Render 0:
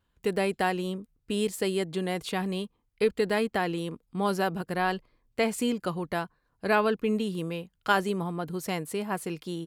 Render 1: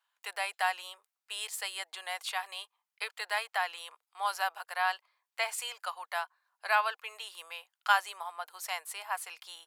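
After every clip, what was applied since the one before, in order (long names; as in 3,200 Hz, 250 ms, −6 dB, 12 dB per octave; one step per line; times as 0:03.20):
Butterworth high-pass 750 Hz 36 dB per octave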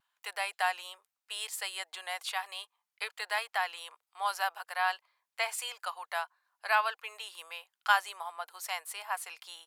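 pitch vibrato 0.93 Hz 22 cents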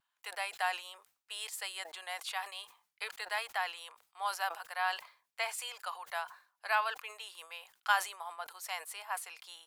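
level that may fall only so fast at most 140 dB per second
level −3.5 dB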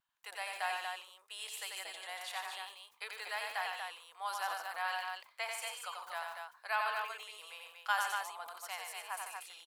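loudspeakers that aren't time-aligned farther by 31 metres −4 dB, 51 metres −11 dB, 81 metres −5 dB
level −4.5 dB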